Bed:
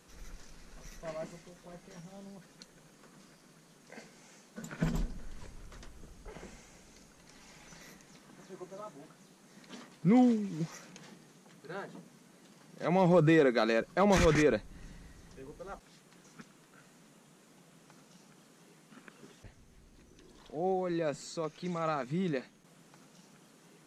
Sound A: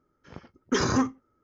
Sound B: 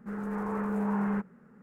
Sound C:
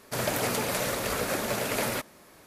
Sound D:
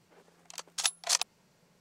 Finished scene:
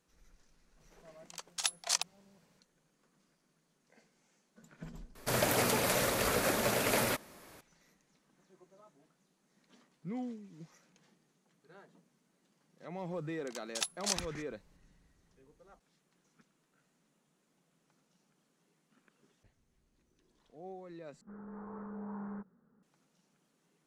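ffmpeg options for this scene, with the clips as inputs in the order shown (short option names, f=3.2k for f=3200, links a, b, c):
-filter_complex "[4:a]asplit=2[a][b];[0:a]volume=-15.5dB[c];[2:a]lowpass=f=1.5k:w=0.5412,lowpass=f=1.5k:w=1.3066[d];[c]asplit=2[e][f];[e]atrim=end=21.214[g];[d]atrim=end=1.62,asetpts=PTS-STARTPTS,volume=-13.5dB[h];[f]atrim=start=22.826[i];[a]atrim=end=1.8,asetpts=PTS-STARTPTS,volume=-4dB,afade=t=in:d=0.004:c=hsin,afade=t=out:st=1.796:d=0.004:c=hsin,adelay=800[j];[3:a]atrim=end=2.46,asetpts=PTS-STARTPTS,volume=-1.5dB,afade=t=in:d=0.004:c=hsin,afade=t=out:st=2.456:d=0.004:c=hsin,adelay=5150[k];[b]atrim=end=1.8,asetpts=PTS-STARTPTS,volume=-6.5dB,afade=t=in:d=0.004:c=hsin,afade=t=out:st=1.796:d=0.004:c=hsin,adelay=12970[l];[g][h]acrossfade=d=0.004:c1=hsin:c2=hsin[m];[m][i]acrossfade=d=0.004:c1=hsin:c2=hsin[n];[n][j][k][l]amix=inputs=4:normalize=0"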